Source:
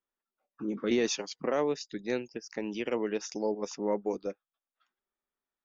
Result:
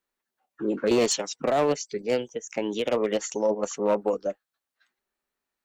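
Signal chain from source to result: one-sided clip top -24.5 dBFS, bottom -20 dBFS; formant shift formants +3 st; trim +7 dB

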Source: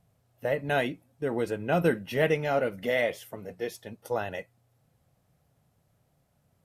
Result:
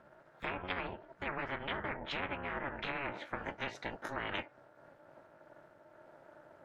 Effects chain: pitch bend over the whole clip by +4.5 st ending unshifted; low-pass that closes with the level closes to 930 Hz, closed at -24 dBFS; two resonant band-passes 930 Hz, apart 1.2 oct; AM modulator 280 Hz, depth 85%; spectrum-flattening compressor 10:1; trim +1.5 dB

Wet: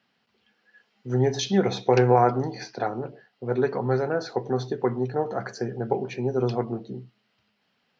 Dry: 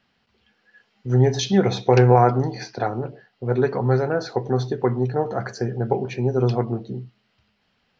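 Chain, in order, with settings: high-pass 150 Hz 12 dB/octave; trim -3 dB

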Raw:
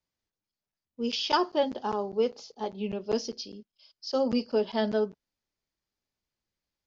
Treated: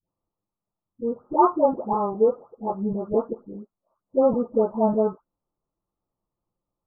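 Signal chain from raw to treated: delay that grows with frequency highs late, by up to 513 ms; steep low-pass 1.3 kHz 96 dB/octave; trim +8.5 dB

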